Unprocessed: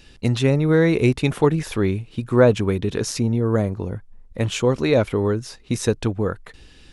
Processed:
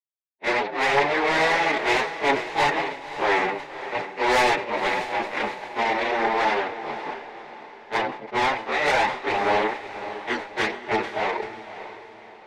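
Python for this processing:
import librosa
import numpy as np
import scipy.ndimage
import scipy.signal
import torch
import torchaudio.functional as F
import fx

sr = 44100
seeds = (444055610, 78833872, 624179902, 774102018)

y = fx.spec_flatten(x, sr, power=0.11)
y = fx.backlash(y, sr, play_db=-11.5)
y = fx.stretch_vocoder(y, sr, factor=1.8)
y = fx.cabinet(y, sr, low_hz=320.0, low_slope=12, high_hz=3300.0, hz=(410.0, 600.0, 850.0, 1300.0, 2000.0, 3100.0), db=(8, 5, 9, -4, 6, -7))
y = 10.0 ** (-19.0 / 20.0) * np.tanh(y / 10.0 ** (-19.0 / 20.0))
y = fx.chorus_voices(y, sr, voices=4, hz=0.38, base_ms=23, depth_ms=4.7, mix_pct=65)
y = fx.echo_diffused(y, sr, ms=561, feedback_pct=42, wet_db=-12)
y = fx.sustainer(y, sr, db_per_s=110.0)
y = F.gain(torch.from_numpy(y), 5.0).numpy()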